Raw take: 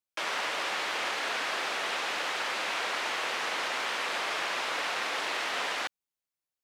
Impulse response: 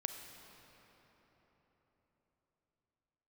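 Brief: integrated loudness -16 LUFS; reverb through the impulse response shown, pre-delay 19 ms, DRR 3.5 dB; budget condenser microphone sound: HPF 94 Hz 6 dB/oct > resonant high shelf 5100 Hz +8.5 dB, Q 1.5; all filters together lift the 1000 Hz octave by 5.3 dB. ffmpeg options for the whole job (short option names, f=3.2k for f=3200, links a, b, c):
-filter_complex "[0:a]equalizer=f=1k:t=o:g=7,asplit=2[a][b];[1:a]atrim=start_sample=2205,adelay=19[c];[b][c]afir=irnorm=-1:irlink=0,volume=-3.5dB[d];[a][d]amix=inputs=2:normalize=0,highpass=f=94:p=1,highshelf=f=5.1k:t=q:w=1.5:g=8.5,volume=10.5dB"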